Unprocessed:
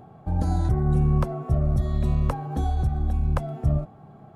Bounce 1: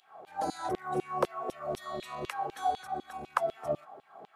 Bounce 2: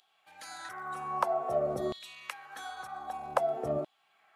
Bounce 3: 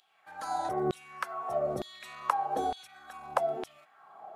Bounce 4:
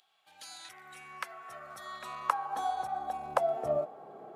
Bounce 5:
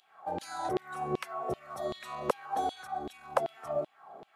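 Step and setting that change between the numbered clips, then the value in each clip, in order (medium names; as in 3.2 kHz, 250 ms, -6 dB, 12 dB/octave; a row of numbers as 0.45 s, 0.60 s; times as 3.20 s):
LFO high-pass, rate: 4 Hz, 0.52 Hz, 1.1 Hz, 0.22 Hz, 2.6 Hz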